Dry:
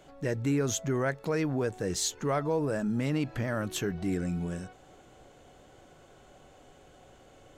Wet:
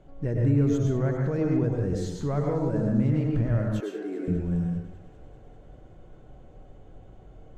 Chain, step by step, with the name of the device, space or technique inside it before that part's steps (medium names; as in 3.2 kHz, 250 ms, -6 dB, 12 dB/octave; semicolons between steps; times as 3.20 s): bathroom (reverberation RT60 0.70 s, pre-delay 97 ms, DRR 0 dB); 3.80–4.28 s: steep high-pass 300 Hz 36 dB/octave; tilt EQ -4 dB/octave; feedback echo behind a high-pass 198 ms, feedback 77%, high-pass 1.4 kHz, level -17 dB; trim -6 dB